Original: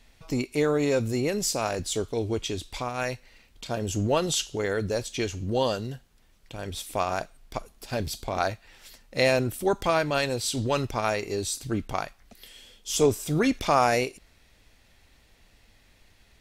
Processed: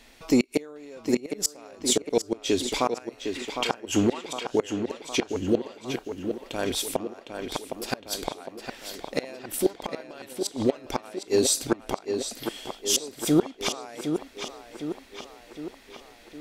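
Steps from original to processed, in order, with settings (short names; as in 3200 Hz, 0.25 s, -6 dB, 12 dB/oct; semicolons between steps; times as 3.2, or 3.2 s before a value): spectral gain 3.35–4.24, 720–3300 Hz +10 dB; resonant low shelf 190 Hz -10 dB, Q 1.5; flipped gate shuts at -17 dBFS, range -28 dB; on a send: tape echo 0.76 s, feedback 64%, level -6 dB, low-pass 4300 Hz; on the sum: gain +7.5 dB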